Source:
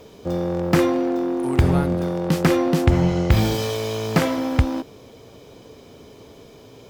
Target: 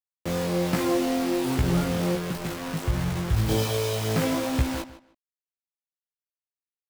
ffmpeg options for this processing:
-filter_complex "[0:a]lowshelf=f=73:g=5.5,alimiter=limit=0.299:level=0:latency=1:release=176,asettb=1/sr,asplit=3[s0][s1][s2];[s0]atrim=end=2.154[s3];[s1]atrim=start=2.15:end=3.49,asetpts=PTS-STARTPTS,afade=t=in:d=0.004:c=qsin,afade=t=out:st=1.336:d=0.004:c=qsin,acrossover=split=140[s4][s5];[s5]acompressor=threshold=0.0251:ratio=6[s6];[s4][s6]amix=inputs=2:normalize=0[s7];[s2]atrim=start=3.486[s8];[s3][s7]acrossfade=d=0.004:c1=hsin:c2=qsin[s9];[s9][s8]acrossfade=d=0.004:c1=qsin:c2=hsin,acrusher=bits=4:mix=0:aa=0.000001,flanger=delay=16:depth=2.8:speed=1.3,asplit=2[s10][s11];[s11]adelay=153,lowpass=f=4600:p=1,volume=0.178,asplit=2[s12][s13];[s13]adelay=153,lowpass=f=4600:p=1,volume=0.21[s14];[s10][s12][s14]amix=inputs=3:normalize=0"

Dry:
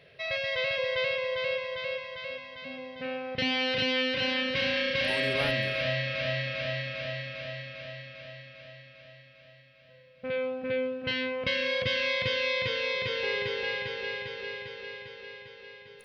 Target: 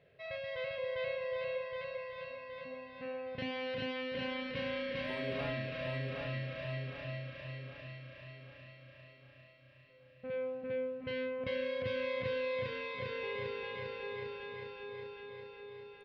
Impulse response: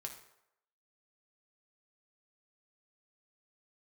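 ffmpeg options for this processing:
-filter_complex "[0:a]lowpass=f=1100:p=1,asplit=2[s0][s1];[s1]adelay=37,volume=0.237[s2];[s0][s2]amix=inputs=2:normalize=0,aecho=1:1:768|1536|2304|3072|3840|4608:0.562|0.281|0.141|0.0703|0.0351|0.0176,volume=0.447"

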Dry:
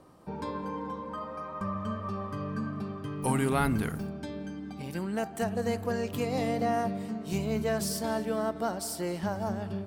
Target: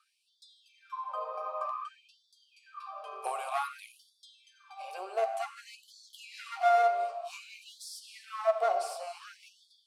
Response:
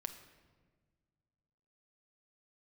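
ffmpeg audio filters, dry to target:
-filter_complex "[0:a]aexciter=amount=3.9:drive=2.8:freq=3800,asplit=2[s0][s1];[s1]alimiter=limit=0.119:level=0:latency=1:release=344,volume=1.12[s2];[s0][s2]amix=inputs=2:normalize=0,aeval=exprs='0.562*sin(PI/2*2*val(0)/0.562)':c=same,asplit=3[s3][s4][s5];[s3]bandpass=f=730:t=q:w=8,volume=1[s6];[s4]bandpass=f=1090:t=q:w=8,volume=0.501[s7];[s5]bandpass=f=2440:t=q:w=8,volume=0.355[s8];[s6][s7][s8]amix=inputs=3:normalize=0,bandreject=f=97.51:t=h:w=4,bandreject=f=195.02:t=h:w=4,bandreject=f=292.53:t=h:w=4,bandreject=f=390.04:t=h:w=4,bandreject=f=487.55:t=h:w=4,bandreject=f=585.06:t=h:w=4,bandreject=f=682.57:t=h:w=4,aeval=exprs='clip(val(0),-1,0.0891)':c=same[s9];[1:a]atrim=start_sample=2205,atrim=end_sample=6615,asetrate=24255,aresample=44100[s10];[s9][s10]afir=irnorm=-1:irlink=0,afftfilt=real='re*gte(b*sr/1024,360*pow(3300/360,0.5+0.5*sin(2*PI*0.54*pts/sr)))':imag='im*gte(b*sr/1024,360*pow(3300/360,0.5+0.5*sin(2*PI*0.54*pts/sr)))':win_size=1024:overlap=0.75,volume=0.596"

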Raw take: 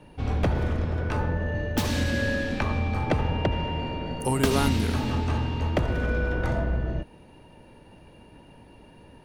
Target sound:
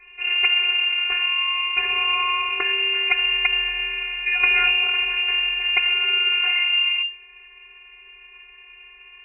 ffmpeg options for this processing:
-af "afftfilt=real='hypot(re,im)*cos(PI*b)':imag='0':win_size=512:overlap=0.75,lowpass=f=2400:t=q:w=0.5098,lowpass=f=2400:t=q:w=0.6013,lowpass=f=2400:t=q:w=0.9,lowpass=f=2400:t=q:w=2.563,afreqshift=-2800,volume=2.51"

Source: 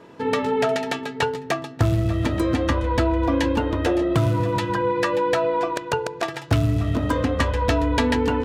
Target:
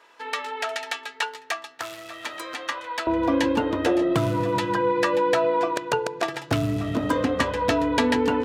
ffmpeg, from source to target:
-af "asetnsamples=n=441:p=0,asendcmd='3.07 highpass f 160',highpass=1100"

